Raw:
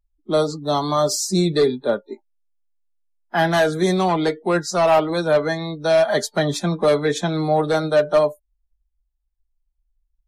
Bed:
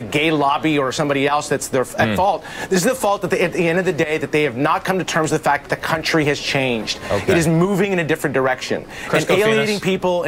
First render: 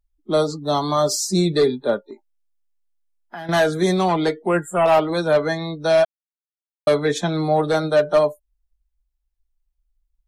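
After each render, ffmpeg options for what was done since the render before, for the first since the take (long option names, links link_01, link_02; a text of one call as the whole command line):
ffmpeg -i in.wav -filter_complex "[0:a]asettb=1/sr,asplit=3[link_01][link_02][link_03];[link_01]atrim=end=1.984[link_04];[link_02]atrim=start=1.98:end=3.49,asetpts=PTS-STARTPTS,afade=type=in:duration=0.004:curve=qsin,afade=type=out:start_time=1.506:duration=0.004:curve=qsin,acompressor=threshold=-31dB:ratio=6:attack=3.2:release=140:knee=1:detection=peak[link_05];[link_03]atrim=start=3.486[link_06];[link_04][link_05]acrossfade=duration=0.004:curve1=hsin:curve2=qsin[link_07];[link_07][link_06]acrossfade=duration=0.004:curve1=qsin:curve2=hsin,asettb=1/sr,asplit=3[link_08][link_09][link_10];[link_08]atrim=end=4.464[link_11];[link_09]atrim=start=4.46:end=4.86,asetpts=PTS-STARTPTS,afade=type=in:duration=0.004:curve=qsin,afade=type=out:start_time=0.396:duration=0.004:curve=qsin,asuperstop=centerf=4900:order=20:qfactor=1.2[link_12];[link_10]atrim=start=4.856[link_13];[link_11][link_12]acrossfade=duration=0.004:curve1=hsin:curve2=qsin[link_14];[link_14][link_13]acrossfade=duration=0.004:curve1=qsin:curve2=hsin,asplit=3[link_15][link_16][link_17];[link_15]atrim=end=6.05,asetpts=PTS-STARTPTS,afade=type=out:start_time=6.046:duration=0.004:curve=hsin[link_18];[link_16]atrim=start=6.05:end=6.87,asetpts=PTS-STARTPTS,volume=0[link_19];[link_17]atrim=start=6.87,asetpts=PTS-STARTPTS,afade=type=in:duration=0.004:curve=hsin[link_20];[link_18][link_19][link_20]concat=n=3:v=0:a=1" out.wav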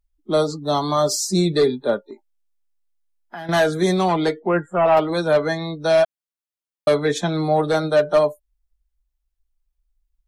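ffmpeg -i in.wav -filter_complex "[0:a]asettb=1/sr,asplit=3[link_01][link_02][link_03];[link_01]atrim=end=4.404[link_04];[link_02]atrim=start=4.4:end=4.97,asetpts=PTS-STARTPTS,afade=type=in:duration=0.004:curve=qsin,afade=type=out:start_time=0.566:duration=0.004:curve=qsin,lowpass=2400[link_05];[link_03]atrim=start=4.966[link_06];[link_04][link_05]acrossfade=duration=0.004:curve1=hsin:curve2=qsin[link_07];[link_07][link_06]acrossfade=duration=0.004:curve1=qsin:curve2=hsin" out.wav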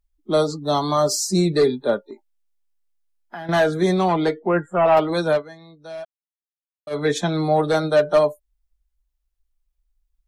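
ffmpeg -i in.wav -filter_complex "[0:a]asettb=1/sr,asplit=3[link_01][link_02][link_03];[link_01]atrim=end=0.974[link_04];[link_02]atrim=start=0.97:end=1.65,asetpts=PTS-STARTPTS,afade=type=in:duration=0.004:curve=qsin,afade=type=out:start_time=0.676:duration=0.004:curve=qsin,bandreject=frequency=3500:width=6.1[link_05];[link_03]atrim=start=1.646[link_06];[link_04][link_05]acrossfade=duration=0.004:curve1=hsin:curve2=qsin[link_07];[link_07][link_06]acrossfade=duration=0.004:curve1=qsin:curve2=hsin,asettb=1/sr,asplit=3[link_08][link_09][link_10];[link_08]atrim=end=3.374[link_11];[link_09]atrim=start=3.37:end=4.57,asetpts=PTS-STARTPTS,afade=type=in:duration=0.004:curve=qsin,afade=type=out:start_time=1.196:duration=0.004:curve=qsin,highshelf=frequency=4100:gain=-7.5[link_12];[link_10]atrim=start=4.566[link_13];[link_11][link_12]acrossfade=duration=0.004:curve1=hsin:curve2=qsin[link_14];[link_14][link_13]acrossfade=duration=0.004:curve1=qsin:curve2=hsin,asplit=3[link_15][link_16][link_17];[link_15]atrim=end=5.43,asetpts=PTS-STARTPTS,afade=type=out:start_time=5.26:duration=0.17:curve=qsin:silence=0.125893[link_18];[link_16]atrim=start=5.43:end=6.9,asetpts=PTS-STARTPTS,volume=-18dB[link_19];[link_17]atrim=start=6.9,asetpts=PTS-STARTPTS,afade=type=in:duration=0.17:curve=qsin:silence=0.125893[link_20];[link_18][link_19][link_20]concat=n=3:v=0:a=1" out.wav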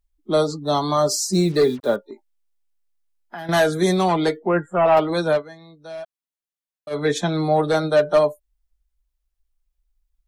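ffmpeg -i in.wav -filter_complex "[0:a]asettb=1/sr,asplit=3[link_01][link_02][link_03];[link_01]atrim=end=1.334[link_04];[link_02]atrim=start=1.33:end=1.96,asetpts=PTS-STARTPTS,afade=type=in:duration=0.004:curve=qsin,afade=type=out:start_time=0.626:duration=0.004:curve=qsin,acrusher=bits=6:mix=0:aa=0.5[link_05];[link_03]atrim=start=1.956[link_06];[link_04][link_05]acrossfade=duration=0.004:curve1=hsin:curve2=qsin[link_07];[link_07][link_06]acrossfade=duration=0.004:curve1=qsin:curve2=hsin,asettb=1/sr,asplit=3[link_08][link_09][link_10];[link_08]atrim=end=3.384[link_11];[link_09]atrim=start=3.38:end=4.37,asetpts=PTS-STARTPTS,afade=type=in:duration=0.004:curve=qsin,afade=type=out:start_time=0.986:duration=0.004:curve=qsin,aemphasis=mode=production:type=50kf[link_12];[link_10]atrim=start=4.366[link_13];[link_11][link_12]acrossfade=duration=0.004:curve1=hsin:curve2=qsin[link_14];[link_14][link_13]acrossfade=duration=0.004:curve1=qsin:curve2=hsin" out.wav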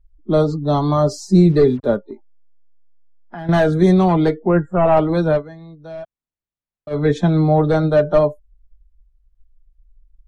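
ffmpeg -i in.wav -af "aemphasis=mode=reproduction:type=riaa" out.wav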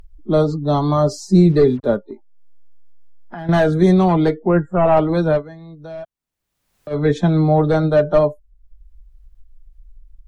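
ffmpeg -i in.wav -af "acompressor=mode=upward:threshold=-31dB:ratio=2.5" out.wav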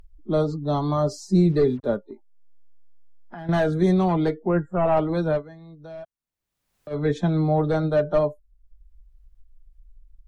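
ffmpeg -i in.wav -af "volume=-6.5dB" out.wav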